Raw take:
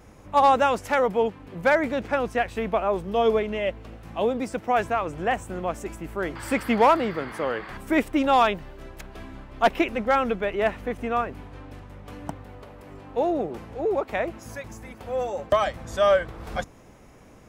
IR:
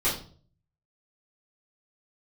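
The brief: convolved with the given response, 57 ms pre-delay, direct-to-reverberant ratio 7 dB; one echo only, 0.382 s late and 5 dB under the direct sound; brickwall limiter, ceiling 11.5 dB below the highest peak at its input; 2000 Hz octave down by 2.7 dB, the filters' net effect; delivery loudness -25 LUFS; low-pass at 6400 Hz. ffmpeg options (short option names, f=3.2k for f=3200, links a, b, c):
-filter_complex "[0:a]lowpass=6.4k,equalizer=f=2k:t=o:g=-3.5,alimiter=limit=-21.5dB:level=0:latency=1,aecho=1:1:382:0.562,asplit=2[a][b];[1:a]atrim=start_sample=2205,adelay=57[c];[b][c]afir=irnorm=-1:irlink=0,volume=-18dB[d];[a][d]amix=inputs=2:normalize=0,volume=5dB"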